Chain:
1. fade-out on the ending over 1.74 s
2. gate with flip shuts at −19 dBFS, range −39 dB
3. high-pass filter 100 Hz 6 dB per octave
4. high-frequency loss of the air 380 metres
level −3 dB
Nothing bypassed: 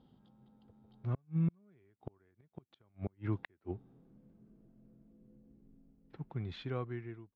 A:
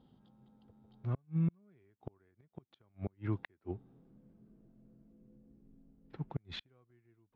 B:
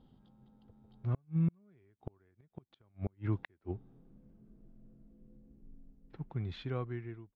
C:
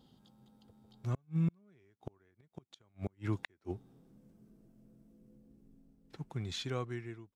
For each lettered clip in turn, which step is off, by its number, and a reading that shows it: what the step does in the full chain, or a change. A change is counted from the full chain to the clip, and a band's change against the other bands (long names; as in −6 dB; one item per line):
1, 500 Hz band −3.0 dB
3, 125 Hz band +2.0 dB
4, 2 kHz band +3.0 dB